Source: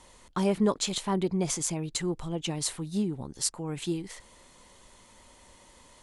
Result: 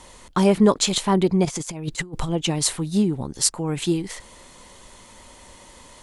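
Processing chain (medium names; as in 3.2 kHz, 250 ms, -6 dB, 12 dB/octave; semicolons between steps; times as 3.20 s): 1.45–2.30 s: compressor with a negative ratio -37 dBFS, ratio -0.5; trim +9 dB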